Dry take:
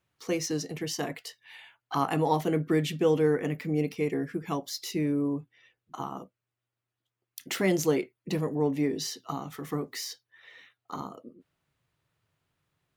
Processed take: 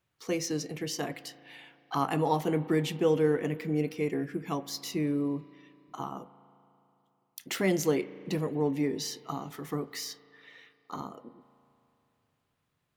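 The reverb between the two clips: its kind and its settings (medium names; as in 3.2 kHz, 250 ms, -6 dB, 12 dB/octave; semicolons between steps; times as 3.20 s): spring tank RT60 2.9 s, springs 36 ms, chirp 75 ms, DRR 16 dB; trim -1.5 dB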